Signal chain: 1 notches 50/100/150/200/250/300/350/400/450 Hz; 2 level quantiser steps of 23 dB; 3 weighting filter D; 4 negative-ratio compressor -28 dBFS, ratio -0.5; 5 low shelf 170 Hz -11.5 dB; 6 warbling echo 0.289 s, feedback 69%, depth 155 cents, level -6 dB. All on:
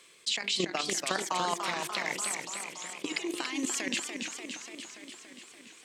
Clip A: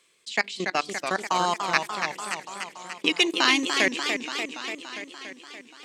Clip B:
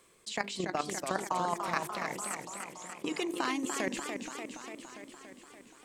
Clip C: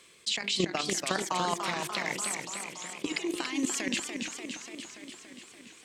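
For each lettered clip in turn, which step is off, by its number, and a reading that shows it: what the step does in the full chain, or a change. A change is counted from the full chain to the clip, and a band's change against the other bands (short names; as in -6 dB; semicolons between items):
4, crest factor change +3.0 dB; 3, 4 kHz band -9.5 dB; 5, 125 Hz band +5.5 dB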